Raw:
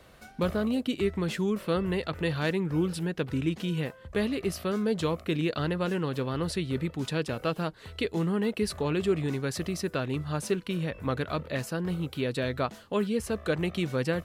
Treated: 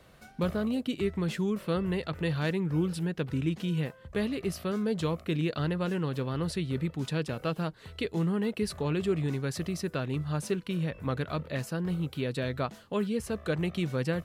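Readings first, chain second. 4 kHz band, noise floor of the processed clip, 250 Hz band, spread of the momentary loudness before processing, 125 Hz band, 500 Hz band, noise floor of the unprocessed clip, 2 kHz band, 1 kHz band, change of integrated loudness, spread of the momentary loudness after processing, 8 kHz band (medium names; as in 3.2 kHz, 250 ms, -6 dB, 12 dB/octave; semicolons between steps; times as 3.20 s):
-3.0 dB, -54 dBFS, -1.0 dB, 4 LU, +0.5 dB, -3.0 dB, -52 dBFS, -3.0 dB, -3.0 dB, -1.5 dB, 4 LU, -3.0 dB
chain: peaking EQ 150 Hz +4.5 dB 0.78 oct; trim -3 dB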